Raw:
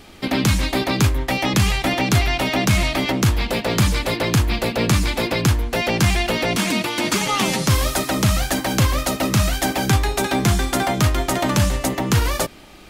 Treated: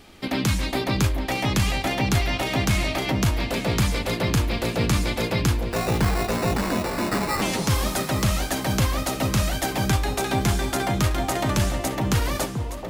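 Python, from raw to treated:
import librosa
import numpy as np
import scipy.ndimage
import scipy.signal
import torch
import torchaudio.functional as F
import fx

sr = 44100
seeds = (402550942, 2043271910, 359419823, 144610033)

y = fx.sample_hold(x, sr, seeds[0], rate_hz=3200.0, jitter_pct=0, at=(5.71, 7.42))
y = fx.echo_alternate(y, sr, ms=434, hz=1000.0, feedback_pct=54, wet_db=-5.5)
y = y * librosa.db_to_amplitude(-5.0)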